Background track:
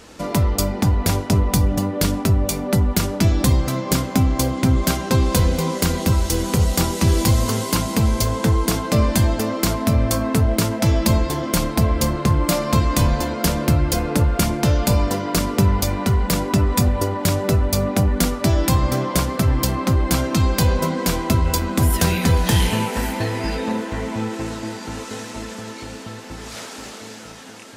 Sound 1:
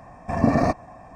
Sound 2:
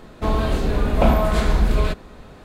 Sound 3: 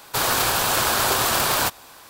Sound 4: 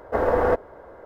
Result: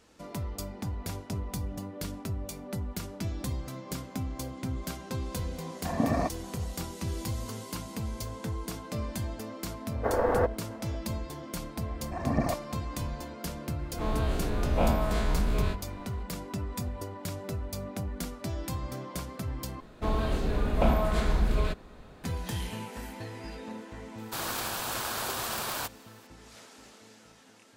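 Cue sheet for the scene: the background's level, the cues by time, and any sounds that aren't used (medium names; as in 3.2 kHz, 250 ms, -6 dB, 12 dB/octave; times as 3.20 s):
background track -17.5 dB
5.56 s: add 1 -8 dB + high-pass 120 Hz
9.91 s: add 4 -5.5 dB
11.83 s: add 1 -11 dB + phaser 1.8 Hz, delay 3.5 ms, feedback 48%
13.79 s: add 2 -13 dB + every event in the spectrogram widened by 60 ms
19.80 s: replace with 2 -8 dB
24.18 s: add 3 -13 dB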